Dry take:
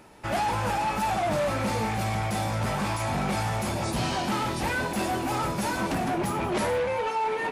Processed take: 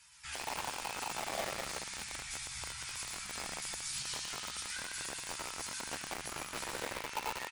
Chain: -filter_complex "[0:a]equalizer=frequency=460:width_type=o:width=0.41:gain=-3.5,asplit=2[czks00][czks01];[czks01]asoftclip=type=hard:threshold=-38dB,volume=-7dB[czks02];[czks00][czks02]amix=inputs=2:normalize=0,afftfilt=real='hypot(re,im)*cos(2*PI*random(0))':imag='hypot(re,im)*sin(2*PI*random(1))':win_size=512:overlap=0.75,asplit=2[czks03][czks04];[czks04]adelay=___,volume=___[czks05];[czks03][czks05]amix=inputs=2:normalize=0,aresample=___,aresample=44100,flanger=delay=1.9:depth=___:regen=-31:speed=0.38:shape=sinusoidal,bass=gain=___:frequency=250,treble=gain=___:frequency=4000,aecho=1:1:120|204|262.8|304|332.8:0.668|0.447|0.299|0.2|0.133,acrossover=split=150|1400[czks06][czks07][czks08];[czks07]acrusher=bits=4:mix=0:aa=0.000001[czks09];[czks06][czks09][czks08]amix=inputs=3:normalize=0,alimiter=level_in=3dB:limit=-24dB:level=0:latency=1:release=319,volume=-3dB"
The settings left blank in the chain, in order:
15, -3.5dB, 22050, 4.2, -14, 11